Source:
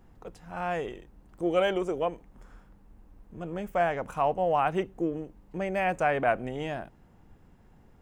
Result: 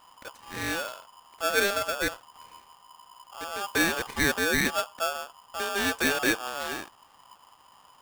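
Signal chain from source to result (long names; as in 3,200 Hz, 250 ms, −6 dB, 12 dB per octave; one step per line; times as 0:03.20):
0:03.61–0:04.39: low-shelf EQ 400 Hz +4 dB
ring modulator with a square carrier 1,000 Hz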